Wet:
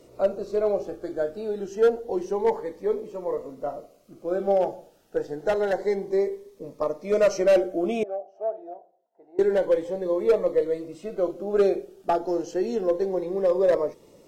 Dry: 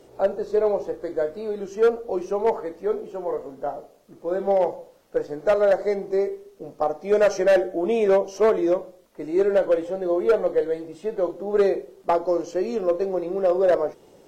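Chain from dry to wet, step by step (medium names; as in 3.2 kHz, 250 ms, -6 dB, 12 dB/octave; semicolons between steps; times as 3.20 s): 8.03–9.39 s: band-pass filter 700 Hz, Q 8.6; Shepard-style phaser rising 0.28 Hz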